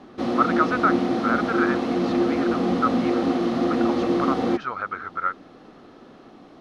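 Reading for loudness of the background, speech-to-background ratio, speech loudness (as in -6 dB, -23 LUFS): -23.0 LUFS, -4.5 dB, -27.5 LUFS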